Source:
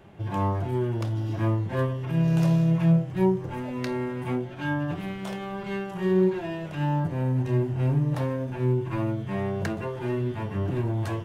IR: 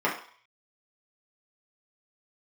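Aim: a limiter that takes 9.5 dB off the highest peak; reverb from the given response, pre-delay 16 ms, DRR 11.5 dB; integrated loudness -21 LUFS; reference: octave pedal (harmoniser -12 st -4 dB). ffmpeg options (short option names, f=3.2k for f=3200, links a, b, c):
-filter_complex "[0:a]alimiter=limit=-20dB:level=0:latency=1,asplit=2[a][b];[1:a]atrim=start_sample=2205,adelay=16[c];[b][c]afir=irnorm=-1:irlink=0,volume=-25.5dB[d];[a][d]amix=inputs=2:normalize=0,asplit=2[e][f];[f]asetrate=22050,aresample=44100,atempo=2,volume=-4dB[g];[e][g]amix=inputs=2:normalize=0,volume=7.5dB"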